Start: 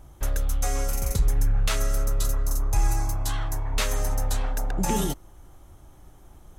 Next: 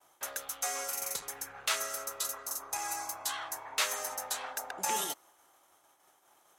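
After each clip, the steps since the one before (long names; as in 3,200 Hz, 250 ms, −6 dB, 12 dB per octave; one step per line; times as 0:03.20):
downward expander −44 dBFS
high-pass filter 770 Hz 12 dB per octave
level −1 dB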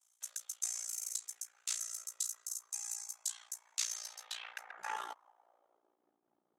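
band-pass filter sweep 7,300 Hz → 240 Hz, 0:03.72–0:06.23
amplitude modulation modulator 58 Hz, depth 80%
level +5 dB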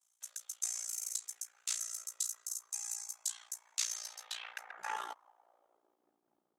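automatic gain control gain up to 4 dB
level −3 dB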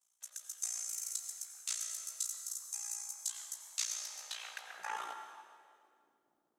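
convolution reverb RT60 1.9 s, pre-delay 78 ms, DRR 6 dB
level −1.5 dB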